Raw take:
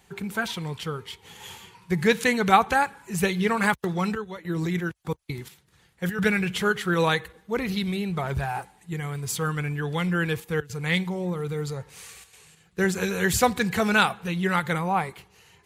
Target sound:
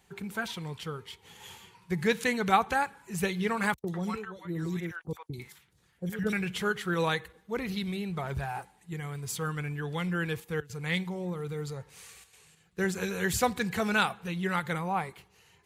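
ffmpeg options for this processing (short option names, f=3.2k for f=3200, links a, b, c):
-filter_complex "[0:a]asettb=1/sr,asplit=3[a][b][c];[a]atrim=end=3.744[d];[b]atrim=start=3.74:end=6.33,asetpts=PTS-STARTPTS,afade=t=in:d=0.004:c=qsin,afade=t=out:st=2.586:d=0.004:c=qsin,acrossover=split=760|3300[e][f][g];[g]adelay=40[h];[f]adelay=100[i];[e][i][h]amix=inputs=3:normalize=0,atrim=end_sample=114219[j];[c]atrim=start=6.326[k];[d][j]acrossfade=d=0.004:c1=hsin:c2=qsin[l];[l][k]acrossfade=d=0.004:c1=qsin:c2=hsin,volume=-6dB"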